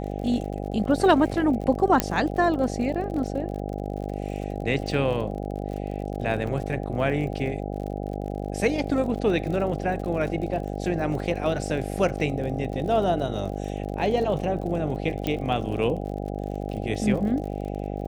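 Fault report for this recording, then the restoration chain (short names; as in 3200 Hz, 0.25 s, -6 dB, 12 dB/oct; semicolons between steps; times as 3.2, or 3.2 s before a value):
buzz 50 Hz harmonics 16 -31 dBFS
crackle 52/s -34 dBFS
2 pop -5 dBFS
6.47 gap 3.8 ms
15.27 pop -13 dBFS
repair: de-click; de-hum 50 Hz, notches 16; interpolate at 6.47, 3.8 ms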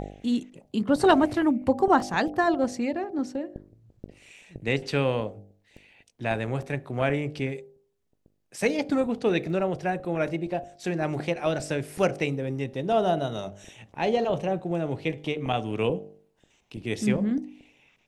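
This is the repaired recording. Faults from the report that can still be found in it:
2 pop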